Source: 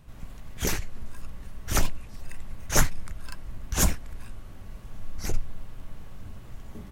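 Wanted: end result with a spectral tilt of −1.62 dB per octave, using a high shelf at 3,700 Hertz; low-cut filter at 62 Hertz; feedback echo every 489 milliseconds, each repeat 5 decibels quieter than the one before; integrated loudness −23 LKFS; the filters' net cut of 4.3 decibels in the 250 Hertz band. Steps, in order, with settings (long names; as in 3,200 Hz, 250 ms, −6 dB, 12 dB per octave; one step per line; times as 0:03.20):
high-pass filter 62 Hz
parametric band 250 Hz −6.5 dB
high-shelf EQ 3,700 Hz +8.5 dB
repeating echo 489 ms, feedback 56%, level −5 dB
level +3 dB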